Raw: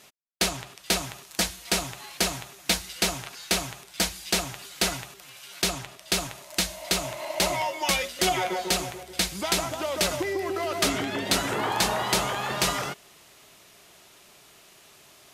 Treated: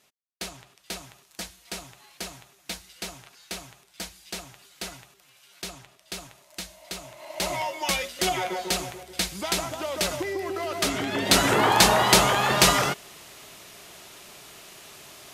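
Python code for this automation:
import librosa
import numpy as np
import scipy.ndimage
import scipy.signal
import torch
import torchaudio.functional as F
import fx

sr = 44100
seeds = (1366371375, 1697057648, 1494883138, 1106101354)

y = fx.gain(x, sr, db=fx.line((7.13, -11.0), (7.55, -1.5), (10.9, -1.5), (11.46, 7.0)))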